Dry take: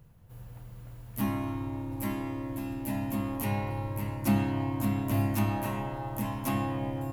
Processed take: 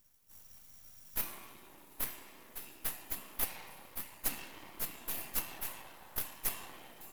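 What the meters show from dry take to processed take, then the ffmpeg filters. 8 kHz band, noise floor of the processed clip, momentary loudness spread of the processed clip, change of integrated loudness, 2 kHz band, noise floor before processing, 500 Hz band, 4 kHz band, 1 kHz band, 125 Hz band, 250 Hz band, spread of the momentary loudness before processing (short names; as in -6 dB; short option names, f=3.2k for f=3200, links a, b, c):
+4.0 dB, -58 dBFS, 18 LU, -7.5 dB, -6.0 dB, -48 dBFS, -16.0 dB, 0.0 dB, -14.0 dB, -28.0 dB, -25.5 dB, 16 LU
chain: -af "afftfilt=real='hypot(re,im)*cos(2*PI*random(0))':imag='hypot(re,im)*sin(2*PI*random(1))':win_size=512:overlap=0.75,aderivative,aeval=exprs='max(val(0),0)':c=same,volume=13dB"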